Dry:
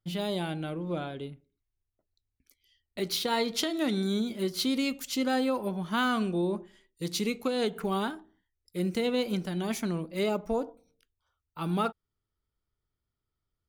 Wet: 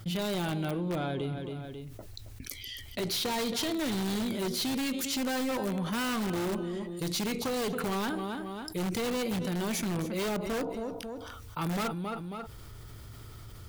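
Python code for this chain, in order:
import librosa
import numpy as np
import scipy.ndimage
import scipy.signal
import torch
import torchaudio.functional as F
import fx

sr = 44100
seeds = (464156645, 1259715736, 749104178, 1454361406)

p1 = fx.diode_clip(x, sr, knee_db=-25.0)
p2 = fx.echo_feedback(p1, sr, ms=272, feedback_pct=23, wet_db=-16.0)
p3 = (np.mod(10.0 ** (27.0 / 20.0) * p2 + 1.0, 2.0) - 1.0) / 10.0 ** (27.0 / 20.0)
p4 = p2 + (p3 * 10.0 ** (-4.0 / 20.0))
p5 = fx.peak_eq(p4, sr, hz=110.0, db=10.5, octaves=0.26)
p6 = fx.env_flatten(p5, sr, amount_pct=70)
y = p6 * 10.0 ** (-4.5 / 20.0)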